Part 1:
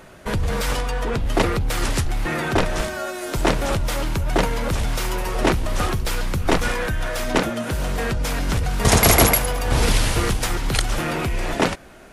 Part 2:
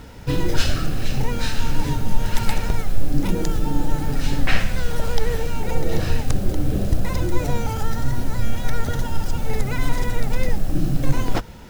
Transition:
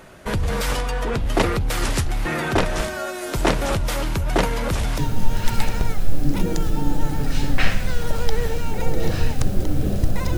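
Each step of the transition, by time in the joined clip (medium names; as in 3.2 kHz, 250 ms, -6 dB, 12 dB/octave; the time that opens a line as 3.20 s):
part 1
4.98 s: go over to part 2 from 1.87 s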